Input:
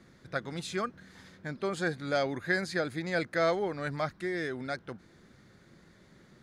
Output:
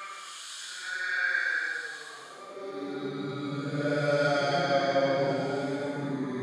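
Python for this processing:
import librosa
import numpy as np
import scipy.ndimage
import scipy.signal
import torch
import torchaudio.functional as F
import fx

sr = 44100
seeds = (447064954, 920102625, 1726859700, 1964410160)

y = fx.reverse_delay_fb(x, sr, ms=185, feedback_pct=77, wet_db=-10)
y = fx.paulstretch(y, sr, seeds[0], factor=9.9, window_s=0.1, from_s=1.72)
y = fx.filter_sweep_highpass(y, sr, from_hz=1600.0, to_hz=150.0, start_s=1.7, end_s=3.36, q=1.6)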